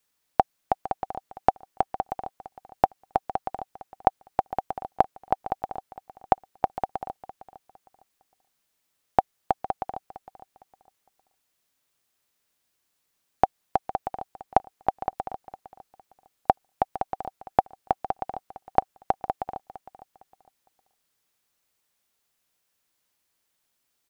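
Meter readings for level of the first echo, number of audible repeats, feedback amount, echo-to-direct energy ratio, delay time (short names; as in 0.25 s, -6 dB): -15.5 dB, 2, 26%, -15.0 dB, 0.458 s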